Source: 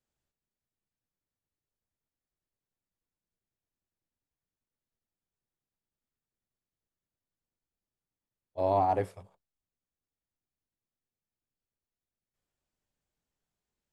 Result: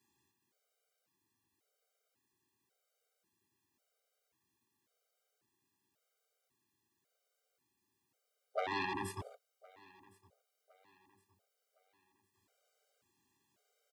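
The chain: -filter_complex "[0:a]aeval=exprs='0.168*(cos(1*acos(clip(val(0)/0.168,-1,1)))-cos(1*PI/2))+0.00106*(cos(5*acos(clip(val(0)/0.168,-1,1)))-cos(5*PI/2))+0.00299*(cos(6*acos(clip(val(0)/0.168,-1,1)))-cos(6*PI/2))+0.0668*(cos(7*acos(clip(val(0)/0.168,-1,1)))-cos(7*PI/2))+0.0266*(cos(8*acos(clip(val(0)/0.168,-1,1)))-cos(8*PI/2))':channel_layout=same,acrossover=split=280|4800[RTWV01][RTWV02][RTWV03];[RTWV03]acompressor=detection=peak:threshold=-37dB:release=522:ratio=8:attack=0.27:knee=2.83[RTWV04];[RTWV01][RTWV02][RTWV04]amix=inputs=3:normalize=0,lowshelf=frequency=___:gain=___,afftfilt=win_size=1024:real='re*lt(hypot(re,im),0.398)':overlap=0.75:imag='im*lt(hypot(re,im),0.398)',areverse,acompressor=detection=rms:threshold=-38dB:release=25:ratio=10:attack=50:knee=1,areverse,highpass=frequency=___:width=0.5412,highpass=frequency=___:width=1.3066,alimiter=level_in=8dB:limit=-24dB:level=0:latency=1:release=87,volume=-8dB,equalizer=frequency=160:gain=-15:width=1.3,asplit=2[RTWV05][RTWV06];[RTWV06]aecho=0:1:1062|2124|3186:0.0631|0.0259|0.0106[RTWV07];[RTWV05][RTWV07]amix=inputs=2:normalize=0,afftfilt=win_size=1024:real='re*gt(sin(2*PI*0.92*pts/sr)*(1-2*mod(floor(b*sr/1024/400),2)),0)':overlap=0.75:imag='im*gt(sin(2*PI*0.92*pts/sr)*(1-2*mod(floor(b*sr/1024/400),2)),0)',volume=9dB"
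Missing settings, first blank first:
410, 7, 120, 120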